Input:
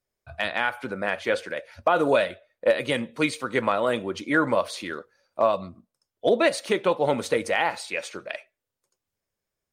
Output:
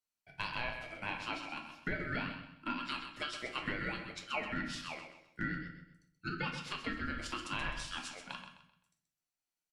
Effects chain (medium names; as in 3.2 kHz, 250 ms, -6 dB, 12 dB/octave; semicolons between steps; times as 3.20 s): low-pass that closes with the level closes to 3 kHz, closed at -18 dBFS; Bessel high-pass 1 kHz, order 8; peaking EQ 2.7 kHz -11.5 dB 0.22 oct; compression, threshold -27 dBFS, peak gain reduction 7 dB; ring modulator 820 Hz; feedback delay 129 ms, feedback 33%, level -9 dB; simulated room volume 61 m³, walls mixed, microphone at 0.46 m; trim -4.5 dB